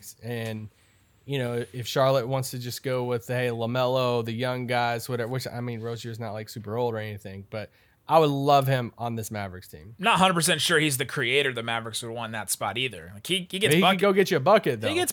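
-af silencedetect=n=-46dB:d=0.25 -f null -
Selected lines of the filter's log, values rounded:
silence_start: 0.68
silence_end: 1.27 | silence_duration: 0.59
silence_start: 7.67
silence_end: 8.07 | silence_duration: 0.41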